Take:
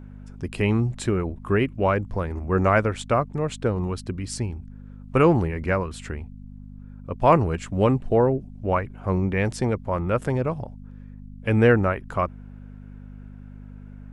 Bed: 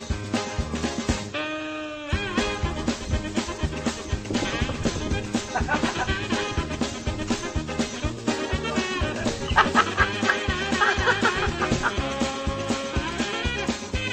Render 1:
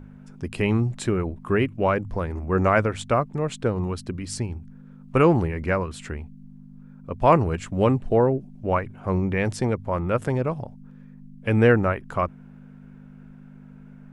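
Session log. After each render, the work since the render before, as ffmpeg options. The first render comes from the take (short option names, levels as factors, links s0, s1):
-af "bandreject=f=50:t=h:w=4,bandreject=f=100:t=h:w=4"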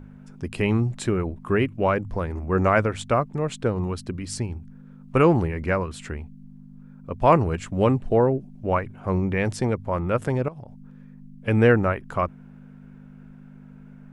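-filter_complex "[0:a]asettb=1/sr,asplit=3[s0][s1][s2];[s0]atrim=end=10.484[s3];[s1]atrim=start=10.48:end=11.48,asetpts=PTS-STARTPTS,afade=t=in:d=0.004:c=qsin,afade=t=out:st=0.996:d=0.004:c=qsin,acompressor=threshold=0.0178:ratio=16:attack=3.2:release=140:knee=1:detection=peak[s4];[s2]atrim=start=11.476[s5];[s3][s4]acrossfade=d=0.004:c1=hsin:c2=qsin[s6];[s6][s5]acrossfade=d=0.004:c1=qsin:c2=hsin"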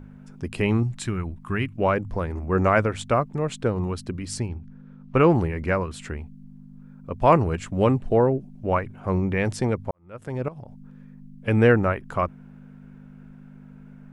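-filter_complex "[0:a]asettb=1/sr,asplit=3[s0][s1][s2];[s0]atrim=end=0.834[s3];[s1]atrim=start=0.83:end=1.76,asetpts=PTS-STARTPTS,afade=t=in:d=0.004:c=qsin,afade=t=out:st=0.926:d=0.004:c=qsin,equalizer=f=490:t=o:w=1.4:g=-12.5[s4];[s2]atrim=start=1.756[s5];[s3][s4]acrossfade=d=0.004:c1=hsin:c2=qsin[s6];[s6][s5]acrossfade=d=0.004:c1=qsin:c2=hsin,asettb=1/sr,asplit=3[s7][s8][s9];[s7]atrim=end=4.484[s10];[s8]atrim=start=4.48:end=5.3,asetpts=PTS-STARTPTS,afade=t=in:d=0.004:c=qsin,afade=t=out:st=0.816:d=0.004:c=qsin,lowpass=5000[s11];[s9]atrim=start=5.296[s12];[s10][s11]acrossfade=d=0.004:c1=hsin:c2=qsin[s13];[s13][s12]acrossfade=d=0.004:c1=qsin:c2=hsin,asplit=2[s14][s15];[s14]atrim=end=9.91,asetpts=PTS-STARTPTS,afade=t=out:st=9.906:d=0.004:c=hsin[s16];[s15]atrim=start=9.91,asetpts=PTS-STARTPTS,afade=t=in:d=0.61:c=qua[s17];[s16][s17]concat=n=2:v=0:a=1"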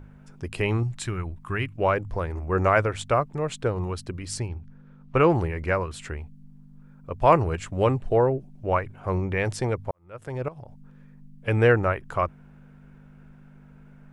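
-af "equalizer=f=220:t=o:w=0.78:g=-9"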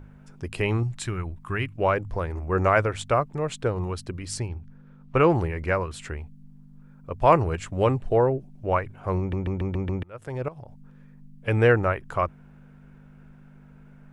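-filter_complex "[0:a]asplit=7[s0][s1][s2][s3][s4][s5][s6];[s0]atrim=end=9.332[s7];[s1]atrim=start=9.188:end=9.332[s8];[s2]atrim=start=9.188:end=9.332[s9];[s3]atrim=start=9.188:end=9.332[s10];[s4]atrim=start=9.188:end=9.332[s11];[s5]atrim=start=9.188:end=9.332[s12];[s6]atrim=start=10.028[s13];[s7][s8]acrossfade=d=0.004:c1=hsin:c2=hsin[s14];[s14][s9]acrossfade=d=0.004:c1=hsin:c2=hsin[s15];[s15][s10]acrossfade=d=0.004:c1=hsin:c2=hsin[s16];[s16][s11]acrossfade=d=0.004:c1=hsin:c2=hsin[s17];[s17][s12]acrossfade=d=0.004:c1=hsin:c2=hsin[s18];[s18][s13]acrossfade=d=0.004:c1=hsin:c2=hsin"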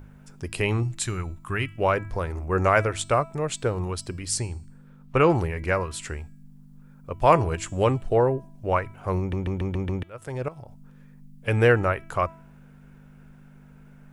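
-af "highshelf=f=5000:g=10.5,bandreject=f=328.4:t=h:w=4,bandreject=f=656.8:t=h:w=4,bandreject=f=985.2:t=h:w=4,bandreject=f=1313.6:t=h:w=4,bandreject=f=1642:t=h:w=4,bandreject=f=1970.4:t=h:w=4,bandreject=f=2298.8:t=h:w=4,bandreject=f=2627.2:t=h:w=4,bandreject=f=2955.6:t=h:w=4,bandreject=f=3284:t=h:w=4,bandreject=f=3612.4:t=h:w=4,bandreject=f=3940.8:t=h:w=4,bandreject=f=4269.2:t=h:w=4,bandreject=f=4597.6:t=h:w=4,bandreject=f=4926:t=h:w=4,bandreject=f=5254.4:t=h:w=4,bandreject=f=5582.8:t=h:w=4,bandreject=f=5911.2:t=h:w=4,bandreject=f=6239.6:t=h:w=4,bandreject=f=6568:t=h:w=4,bandreject=f=6896.4:t=h:w=4,bandreject=f=7224.8:t=h:w=4,bandreject=f=7553.2:t=h:w=4,bandreject=f=7881.6:t=h:w=4,bandreject=f=8210:t=h:w=4,bandreject=f=8538.4:t=h:w=4,bandreject=f=8866.8:t=h:w=4"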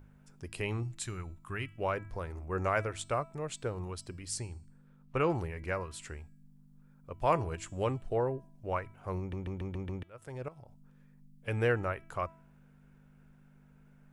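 -af "volume=0.299"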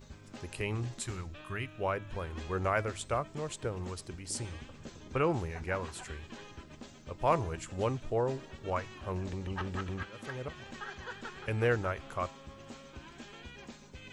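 -filter_complex "[1:a]volume=0.075[s0];[0:a][s0]amix=inputs=2:normalize=0"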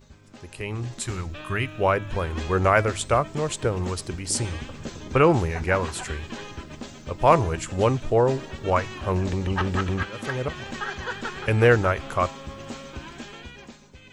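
-af "dynaudnorm=f=190:g=11:m=3.98"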